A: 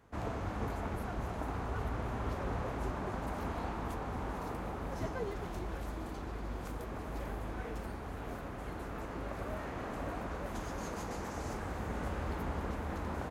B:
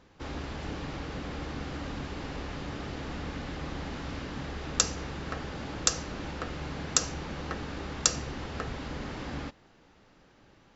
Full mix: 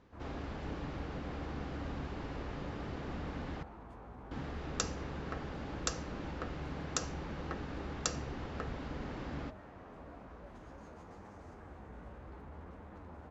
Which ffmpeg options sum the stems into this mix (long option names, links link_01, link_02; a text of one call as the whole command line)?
ffmpeg -i stem1.wav -i stem2.wav -filter_complex "[0:a]lowpass=7400,alimiter=level_in=6.5dB:limit=-24dB:level=0:latency=1:release=22,volume=-6.5dB,flanger=delay=9.4:depth=8.2:regen=48:speed=0.62:shape=triangular,volume=-7dB[link_01];[1:a]volume=-4dB,asplit=3[link_02][link_03][link_04];[link_02]atrim=end=3.63,asetpts=PTS-STARTPTS,afade=type=out:start_time=3.626:duration=0.004:curve=hsin[link_05];[link_03]atrim=start=3.63:end=4.31,asetpts=PTS-STARTPTS,volume=0[link_06];[link_04]atrim=start=4.31,asetpts=PTS-STARTPTS,afade=type=in:duration=0.004:curve=hsin[link_07];[link_05][link_06][link_07]concat=n=3:v=0:a=1[link_08];[link_01][link_08]amix=inputs=2:normalize=0,highshelf=frequency=2800:gain=-9.5" out.wav